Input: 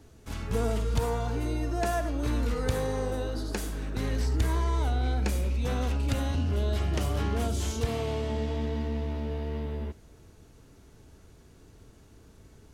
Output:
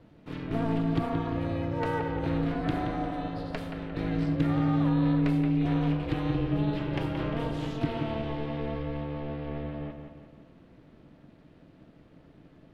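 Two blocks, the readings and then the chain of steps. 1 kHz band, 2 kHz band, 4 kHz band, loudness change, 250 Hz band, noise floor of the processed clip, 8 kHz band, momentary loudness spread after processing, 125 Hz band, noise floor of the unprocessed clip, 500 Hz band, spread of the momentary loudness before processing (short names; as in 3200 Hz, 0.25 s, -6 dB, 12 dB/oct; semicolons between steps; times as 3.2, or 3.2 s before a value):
+1.0 dB, 0.0 dB, -4.0 dB, +0.5 dB, +6.5 dB, -56 dBFS, under -20 dB, 11 LU, -0.5 dB, -55 dBFS, -1.5 dB, 6 LU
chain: high shelf 2200 Hz +11 dB; notch 1300 Hz, Q 23; ring modulator 220 Hz; air absorption 450 m; analogue delay 0.175 s, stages 4096, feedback 50%, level -7 dB; gain +1.5 dB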